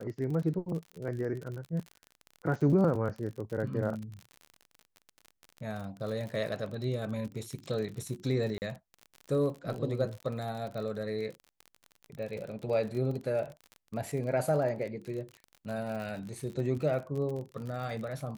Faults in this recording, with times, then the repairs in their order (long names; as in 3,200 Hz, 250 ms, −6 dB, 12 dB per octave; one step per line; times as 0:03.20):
surface crackle 44 per second −37 dBFS
0:08.58–0:08.62: drop-out 39 ms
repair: click removal
repair the gap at 0:08.58, 39 ms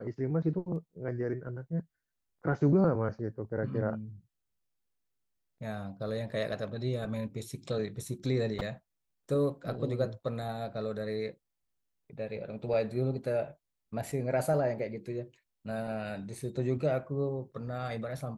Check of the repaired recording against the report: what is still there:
none of them is left